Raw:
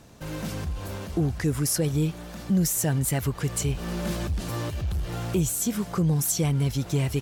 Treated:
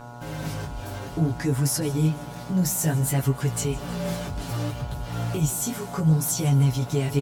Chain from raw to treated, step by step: on a send: feedback echo 0.156 s, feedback 57%, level -19 dB; on the sum: chorus 0.61 Hz, delay 15 ms, depth 7.3 ms; buzz 120 Hz, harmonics 12, -44 dBFS -2 dB/oct; comb 7.1 ms, depth 77%; gain +1 dB

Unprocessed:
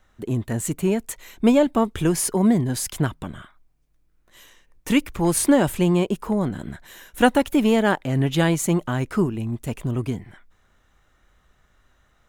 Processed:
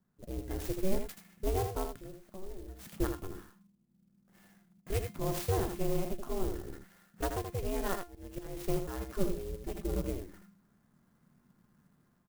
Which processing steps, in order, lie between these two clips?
ring modulator 190 Hz; low shelf 260 Hz +5 dB; 1.89–2.79 compressor 3:1, threshold -39 dBFS, peak gain reduction 19.5 dB; 7.95–8.57 auto swell 0.423 s; 9.2–10.04 comb 5.1 ms, depth 80%; AGC gain up to 9 dB; resonator 350 Hz, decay 0.25 s, harmonics all, mix 70%; low-pass opened by the level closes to 1800 Hz, open at -23 dBFS; echo 80 ms -7 dB; clock jitter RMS 0.068 ms; gain -7.5 dB

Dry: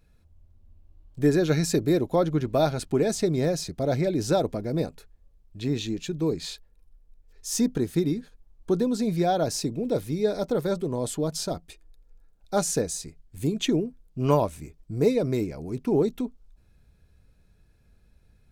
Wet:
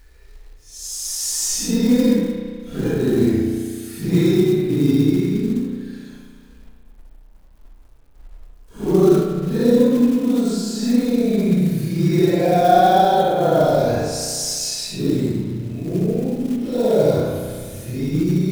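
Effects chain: Paulstretch 6.5×, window 0.05 s, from 7.33; companded quantiser 6-bit; spring tank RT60 1.9 s, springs 33 ms, chirp 40 ms, DRR 2.5 dB; gain +5.5 dB

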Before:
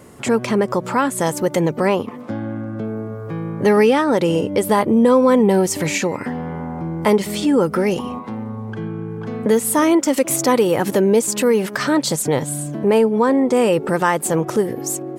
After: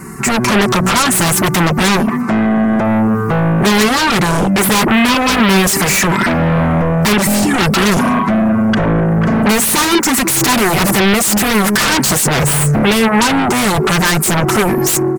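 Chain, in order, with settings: fixed phaser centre 1400 Hz, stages 4; comb 5.2 ms, depth 82%; AGC gain up to 6.5 dB; in parallel at -8 dB: sine folder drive 20 dB, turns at -1.5 dBFS; on the sum: gain -2 dB

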